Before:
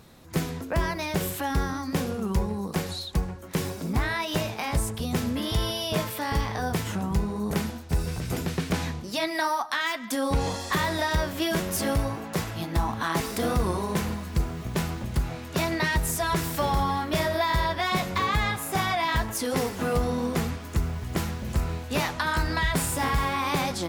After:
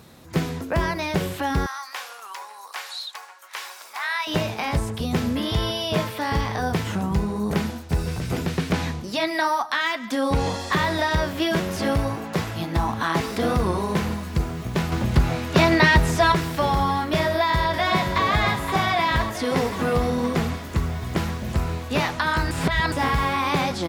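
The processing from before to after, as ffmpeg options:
ffmpeg -i in.wav -filter_complex "[0:a]asettb=1/sr,asplit=3[link_01][link_02][link_03];[link_01]atrim=end=1.664[link_04];[link_02]atrim=start=1.66:end=4.27,asetpts=PTS-STARTPTS,afade=type=in:duration=0.004:curve=qsin,afade=type=out:start_time=2.606:duration=0.004:curve=qsin,highpass=frequency=890:width=0.5412,highpass=frequency=890:width=1.3066[link_05];[link_03]atrim=start=4.266[link_06];[link_04][link_05]acrossfade=duration=0.004:curve1=hsin:curve2=qsin[link_07];[link_07][link_06]acrossfade=duration=0.004:curve1=qsin:curve2=hsin,asplit=2[link_08][link_09];[link_09]afade=type=in:start_time=17.21:duration=0.01,afade=type=out:start_time=18.25:duration=0.01,aecho=0:1:520|1040|1560|2080|2600|3120|3640|4160|4680|5200|5720:0.421697|0.295188|0.206631|0.144642|0.101249|0.0708745|0.0496122|0.0347285|0.02431|0.017017|0.0119119[link_10];[link_08][link_10]amix=inputs=2:normalize=0,asplit=5[link_11][link_12][link_13][link_14][link_15];[link_11]atrim=end=14.922[link_16];[link_12]atrim=start=14.918:end=16.322,asetpts=PTS-STARTPTS,volume=6dB[link_17];[link_13]atrim=start=16.318:end=22.512[link_18];[link_14]atrim=start=22.508:end=22.922,asetpts=PTS-STARTPTS,areverse[link_19];[link_15]atrim=start=22.918[link_20];[link_16][link_17]acrossfade=duration=0.004:curve1=hsin:curve2=hsin[link_21];[link_21][link_18]acrossfade=duration=0.004:curve1=hsin:curve2=hsin[link_22];[link_22][link_19]acrossfade=duration=0.004:curve1=hsin:curve2=hsin[link_23];[link_23][link_20]acrossfade=duration=0.004:curve1=hsin:curve2=hsin,acrossover=split=5200[link_24][link_25];[link_25]acompressor=threshold=-47dB:ratio=4:attack=1:release=60[link_26];[link_24][link_26]amix=inputs=2:normalize=0,highpass=57,volume=4dB" out.wav

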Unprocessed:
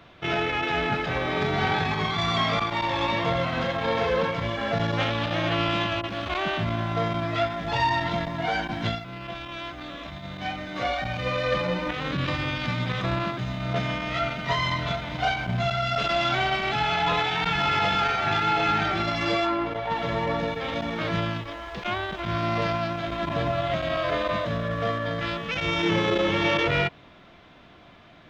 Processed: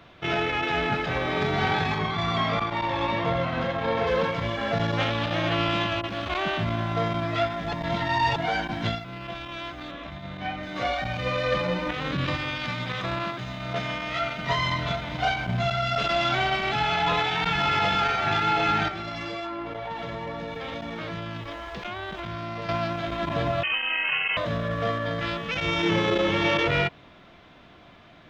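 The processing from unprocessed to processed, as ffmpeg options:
ffmpeg -i in.wav -filter_complex "[0:a]asettb=1/sr,asplit=3[link_01][link_02][link_03];[link_01]atrim=end=1.984[link_04];[link_02]atrim=start=1.98:end=4.07,asetpts=PTS-STARTPTS,afade=type=in:duration=0.004:curve=qsin,afade=type=out:start_time=2.086:duration=0.004:curve=qsin,highshelf=frequency=3800:gain=-9.5[link_05];[link_03]atrim=start=4.066[link_06];[link_04][link_05]acrossfade=duration=0.004:curve1=hsin:curve2=qsin[link_07];[link_07][link_06]acrossfade=duration=0.004:curve1=qsin:curve2=hsin,asettb=1/sr,asplit=3[link_08][link_09][link_10];[link_08]atrim=end=9.914[link_11];[link_09]atrim=start=9.91:end=10.63,asetpts=PTS-STARTPTS,afade=type=in:duration=0.004:curve=qsin,afade=type=out:start_time=0.716:duration=0.004:curve=qsin,acrossover=split=3400[link_12][link_13];[link_13]acompressor=threshold=-56dB:ratio=4:attack=1:release=60[link_14];[link_12][link_14]amix=inputs=2:normalize=0[link_15];[link_10]atrim=start=10.626[link_16];[link_11][link_15]acrossfade=duration=0.004:curve1=hsin:curve2=qsin[link_17];[link_17][link_16]acrossfade=duration=0.004:curve1=qsin:curve2=hsin,asettb=1/sr,asplit=3[link_18][link_19][link_20];[link_18]atrim=end=12.374[link_21];[link_19]atrim=start=12.37:end=14.39,asetpts=PTS-STARTPTS,afade=type=in:duration=0.004:curve=qsin,afade=type=out:start_time=2.016:duration=0.004:curve=qsin,lowshelf=frequency=370:gain=-6.5[link_22];[link_20]atrim=start=14.386[link_23];[link_21][link_22]acrossfade=duration=0.004:curve1=hsin:curve2=qsin[link_24];[link_24][link_23]acrossfade=duration=0.004:curve1=qsin:curve2=hsin,asettb=1/sr,asplit=3[link_25][link_26][link_27];[link_25]atrim=end=18.884[link_28];[link_26]atrim=start=18.88:end=22.69,asetpts=PTS-STARTPTS,afade=type=in:duration=0.004:curve=qsin,afade=type=out:start_time=3.806:duration=0.004:curve=qsin,acompressor=threshold=-30dB:ratio=6:attack=3.2:release=140:knee=1:detection=peak[link_29];[link_27]atrim=start=22.686[link_30];[link_28][link_29]acrossfade=duration=0.004:curve1=hsin:curve2=qsin[link_31];[link_31][link_30]acrossfade=duration=0.004:curve1=qsin:curve2=hsin,asettb=1/sr,asplit=3[link_32][link_33][link_34];[link_32]atrim=end=23.634[link_35];[link_33]atrim=start=23.63:end=24.37,asetpts=PTS-STARTPTS,afade=type=in:duration=0.004:curve=qsin,afade=type=out:start_time=0.736:duration=0.004:curve=qsin,lowpass=frequency=2700:width_type=q:width=0.5098,lowpass=frequency=2700:width_type=q:width=0.6013,lowpass=frequency=2700:width_type=q:width=0.9,lowpass=frequency=2700:width_type=q:width=2.563,afreqshift=-3200[link_36];[link_34]atrim=start=24.366[link_37];[link_35][link_36]acrossfade=duration=0.004:curve1=hsin:curve2=qsin[link_38];[link_38][link_37]acrossfade=duration=0.004:curve1=qsin:curve2=hsin,asplit=3[link_39][link_40][link_41];[link_39]atrim=end=7.732[link_42];[link_40]atrim=start=7.728:end=8.362,asetpts=PTS-STARTPTS,areverse[link_43];[link_41]atrim=start=8.358[link_44];[link_42][link_43]acrossfade=duration=0.004:curve1=hsin:curve2=hsin[link_45];[link_45][link_44]acrossfade=duration=0.004:curve1=hsin:curve2=hsin" out.wav

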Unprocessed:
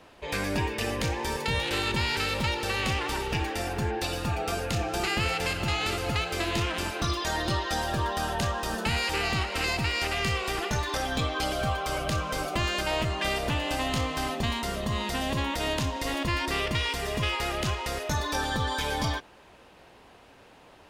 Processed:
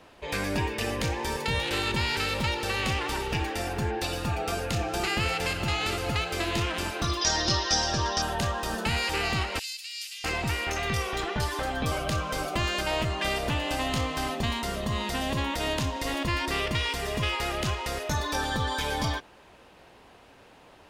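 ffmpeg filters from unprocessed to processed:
ffmpeg -i in.wav -filter_complex "[0:a]asettb=1/sr,asplit=3[link_01][link_02][link_03];[link_01]atrim=end=7.214[link_04];[link_02]atrim=start=7.21:end=8.22,asetpts=PTS-STARTPTS,afade=type=in:duration=0.004:curve=qsin,afade=type=out:start_time=1.006:duration=0.004:curve=qsin,lowpass=frequency=5600:width_type=q:width=8.3[link_05];[link_03]atrim=start=8.216[link_06];[link_04][link_05]acrossfade=duration=0.004:curve1=hsin:curve2=qsin[link_07];[link_07][link_06]acrossfade=duration=0.004:curve1=qsin:curve2=hsin,asettb=1/sr,asplit=3[link_08][link_09][link_10];[link_08]atrim=end=9.594[link_11];[link_09]atrim=start=9.59:end=11.92,asetpts=PTS-STARTPTS,afade=type=in:duration=0.004:curve=qsin,afade=type=out:start_time=2.326:duration=0.004:curve=qsin,acrossover=split=3200[link_12][link_13];[link_12]adelay=650[link_14];[link_14][link_13]amix=inputs=2:normalize=0,atrim=end_sample=102753[link_15];[link_10]atrim=start=11.916[link_16];[link_11][link_15]acrossfade=duration=0.004:curve1=hsin:curve2=qsin[link_17];[link_17][link_16]acrossfade=duration=0.004:curve1=qsin:curve2=hsin" out.wav

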